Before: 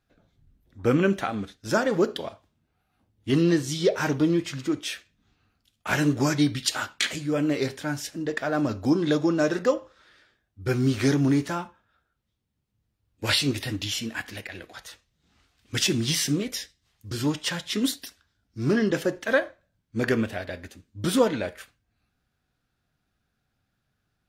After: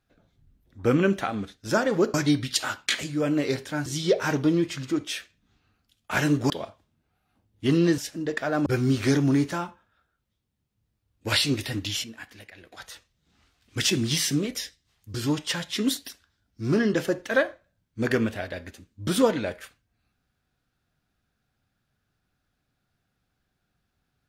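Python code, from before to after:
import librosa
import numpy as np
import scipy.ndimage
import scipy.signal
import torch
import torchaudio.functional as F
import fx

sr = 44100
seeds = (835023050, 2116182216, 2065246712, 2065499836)

y = fx.edit(x, sr, fx.swap(start_s=2.14, length_s=1.48, other_s=6.26, other_length_s=1.72),
    fx.cut(start_s=8.66, length_s=1.97),
    fx.clip_gain(start_s=14.01, length_s=0.68, db=-9.5), tone=tone)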